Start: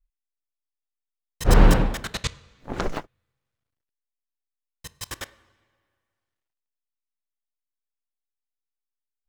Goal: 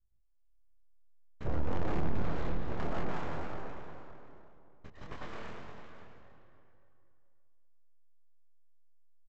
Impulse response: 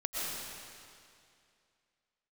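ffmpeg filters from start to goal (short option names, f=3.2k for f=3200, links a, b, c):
-filter_complex "[0:a]lowpass=1k,alimiter=limit=-10.5dB:level=0:latency=1:release=116[a];[1:a]atrim=start_sample=2205[b];[a][b]afir=irnorm=-1:irlink=0,aresample=16000,aeval=exprs='abs(val(0))':c=same,aresample=44100,flanger=delay=22.5:depth=4.3:speed=2.3,asplit=2[c][d];[d]acompressor=threshold=-32dB:ratio=6,volume=2dB[e];[c][e]amix=inputs=2:normalize=0,asoftclip=type=tanh:threshold=-15.5dB,asplit=2[f][g];[g]adelay=571.4,volume=-12dB,highshelf=f=4k:g=-12.9[h];[f][h]amix=inputs=2:normalize=0,volume=-5.5dB"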